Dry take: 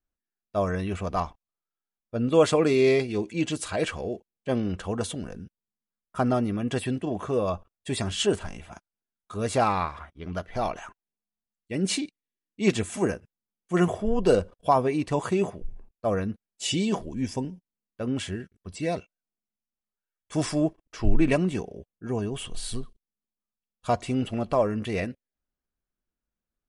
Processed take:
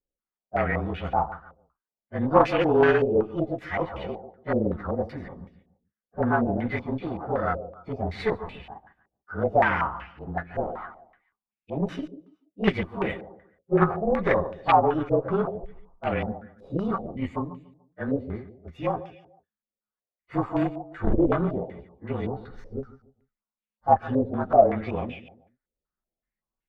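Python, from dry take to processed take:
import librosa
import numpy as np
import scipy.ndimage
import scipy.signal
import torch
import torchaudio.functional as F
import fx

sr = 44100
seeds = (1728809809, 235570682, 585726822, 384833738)

p1 = fx.partial_stretch(x, sr, pct=111)
p2 = p1 + fx.echo_feedback(p1, sr, ms=145, feedback_pct=31, wet_db=-13.5, dry=0)
p3 = fx.cheby_harmonics(p2, sr, harmonics=(4, 6), levels_db=(-9, -11), full_scale_db=-10.0)
y = fx.filter_held_lowpass(p3, sr, hz=5.3, low_hz=520.0, high_hz=2600.0)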